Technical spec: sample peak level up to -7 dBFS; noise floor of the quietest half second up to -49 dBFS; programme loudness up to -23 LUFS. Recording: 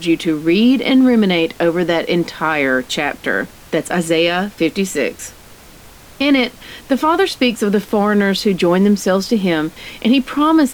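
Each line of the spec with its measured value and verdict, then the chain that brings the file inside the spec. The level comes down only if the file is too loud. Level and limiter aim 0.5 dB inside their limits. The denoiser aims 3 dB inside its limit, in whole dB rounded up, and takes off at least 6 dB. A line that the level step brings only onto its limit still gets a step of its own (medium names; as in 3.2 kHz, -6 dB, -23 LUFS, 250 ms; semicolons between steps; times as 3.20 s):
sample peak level -4.0 dBFS: fail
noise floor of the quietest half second -41 dBFS: fail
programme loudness -16.0 LUFS: fail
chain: noise reduction 6 dB, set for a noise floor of -41 dBFS; trim -7.5 dB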